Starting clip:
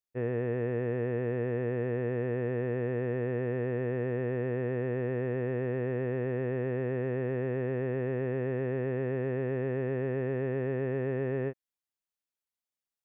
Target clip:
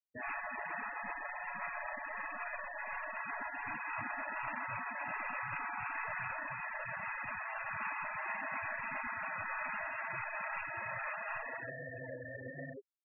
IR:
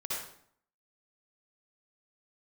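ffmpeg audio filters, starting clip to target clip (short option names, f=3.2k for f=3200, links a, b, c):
-filter_complex "[0:a]flanger=delay=18.5:depth=7.9:speed=1.3,asplit=3[a][b][c];[a]afade=t=out:st=0.86:d=0.02[d];[b]equalizer=f=270:w=2.2:g=7.5,afade=t=in:st=0.86:d=0.02,afade=t=out:st=3.05:d=0.02[e];[c]afade=t=in:st=3.05:d=0.02[f];[d][e][f]amix=inputs=3:normalize=0,bandreject=f=50:t=h:w=6,bandreject=f=100:t=h:w=6,bandreject=f=150:t=h:w=6,bandreject=f=200:t=h:w=6,bandreject=f=250:t=h:w=6,aecho=1:1:1111:0.158,aeval=exprs='0.112*(cos(1*acos(clip(val(0)/0.112,-1,1)))-cos(1*PI/2))+0.00398*(cos(5*acos(clip(val(0)/0.112,-1,1)))-cos(5*PI/2))':c=same,asplit=2[g][h];[h]adelay=34,volume=-4dB[i];[g][i]amix=inputs=2:normalize=0[j];[1:a]atrim=start_sample=2205,afade=t=out:st=0.26:d=0.01,atrim=end_sample=11907[k];[j][k]afir=irnorm=-1:irlink=0,acompressor=threshold=-30dB:ratio=10,highshelf=f=2.9k:g=6,afftfilt=real='re*lt(hypot(re,im),0.02)':imag='im*lt(hypot(re,im),0.02)':win_size=1024:overlap=0.75,bandreject=f=760:w=12,afftfilt=real='re*gte(hypot(re,im),0.00501)':imag='im*gte(hypot(re,im),0.00501)':win_size=1024:overlap=0.75,volume=11.5dB"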